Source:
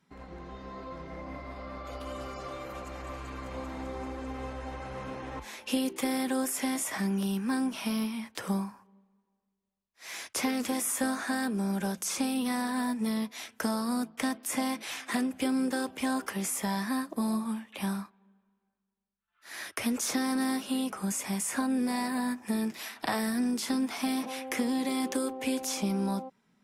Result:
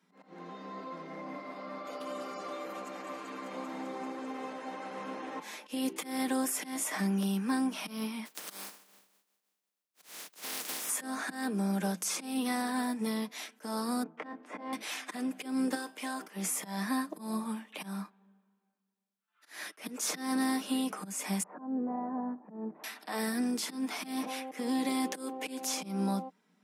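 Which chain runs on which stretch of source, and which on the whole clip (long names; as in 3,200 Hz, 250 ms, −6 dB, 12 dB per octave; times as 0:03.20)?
0:08.25–0:10.88: compressing power law on the bin magnitudes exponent 0.17 + downward compressor 1.5 to 1, threshold −44 dBFS
0:14.03–0:14.73: low-pass filter 1,500 Hz + double-tracking delay 25 ms −6.5 dB
0:15.75–0:16.21: low-shelf EQ 330 Hz −10 dB + tuned comb filter 54 Hz, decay 0.32 s, mix 50%
0:21.43–0:22.84: low-pass filter 1,000 Hz 24 dB per octave + parametric band 270 Hz −2.5 dB 2.4 octaves
whole clip: volume swells 182 ms; elliptic high-pass filter 180 Hz; comb filter 6.6 ms, depth 30%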